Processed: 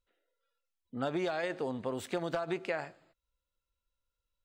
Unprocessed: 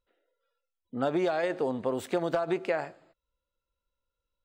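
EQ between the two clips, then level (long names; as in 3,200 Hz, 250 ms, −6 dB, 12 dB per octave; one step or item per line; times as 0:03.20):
parametric band 500 Hz −6.5 dB 3 octaves
high-shelf EQ 11,000 Hz −5.5 dB
0.0 dB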